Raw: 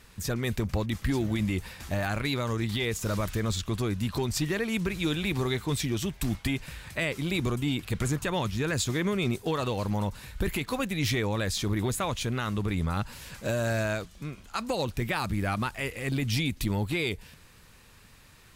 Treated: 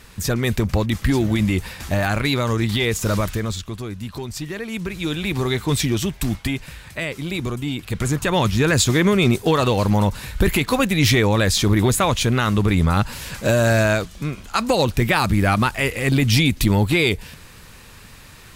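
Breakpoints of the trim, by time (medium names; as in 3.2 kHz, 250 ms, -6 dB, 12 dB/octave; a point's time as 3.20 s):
3.17 s +9 dB
3.77 s -1 dB
4.47 s -1 dB
5.80 s +9.5 dB
6.89 s +3 dB
7.77 s +3 dB
8.46 s +11.5 dB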